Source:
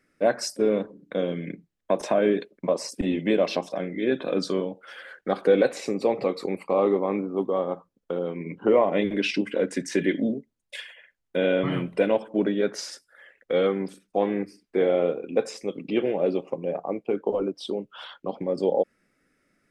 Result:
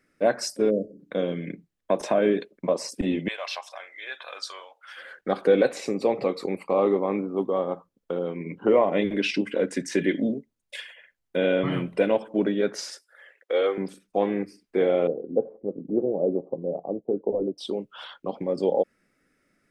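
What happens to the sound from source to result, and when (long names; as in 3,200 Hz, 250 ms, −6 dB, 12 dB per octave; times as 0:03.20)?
0:00.70–0:00.99: time-frequency box erased 670–4,300 Hz
0:03.28–0:04.97: high-pass filter 870 Hz 24 dB per octave
0:12.90–0:13.78: high-pass filter 360 Hz 24 dB per octave
0:15.07–0:17.58: inverse Chebyshev low-pass filter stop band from 3,100 Hz, stop band 70 dB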